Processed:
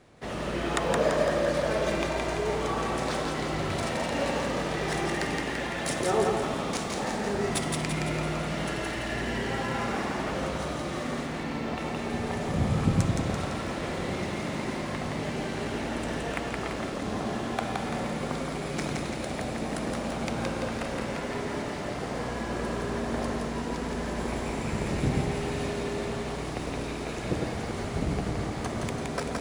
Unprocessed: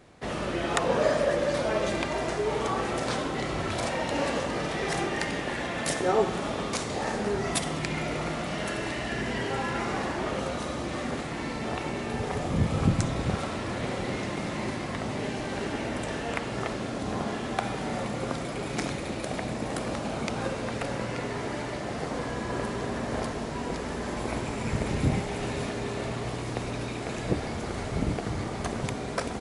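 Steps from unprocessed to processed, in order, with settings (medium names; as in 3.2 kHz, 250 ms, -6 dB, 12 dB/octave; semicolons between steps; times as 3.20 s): 11.26–11.78 s: distance through air 71 m; two-band feedback delay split 610 Hz, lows 103 ms, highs 169 ms, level -3 dB; trim -2.5 dB; IMA ADPCM 176 kbps 44.1 kHz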